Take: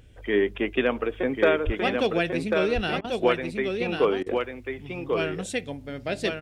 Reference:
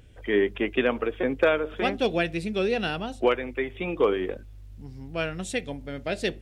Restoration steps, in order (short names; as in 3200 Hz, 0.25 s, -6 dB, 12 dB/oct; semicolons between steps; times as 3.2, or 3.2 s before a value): 1.65–1.77 HPF 140 Hz 24 dB/oct; interpolate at 3.01/4.23, 32 ms; inverse comb 1.093 s -4.5 dB